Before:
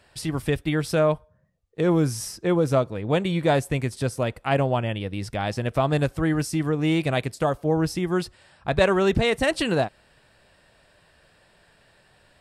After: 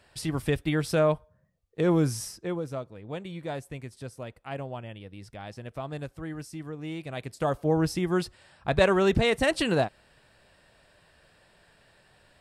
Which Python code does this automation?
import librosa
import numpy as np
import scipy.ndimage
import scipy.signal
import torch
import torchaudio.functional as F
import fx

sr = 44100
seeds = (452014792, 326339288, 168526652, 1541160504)

y = fx.gain(x, sr, db=fx.line((2.16, -2.5), (2.72, -14.0), (7.08, -14.0), (7.54, -2.0)))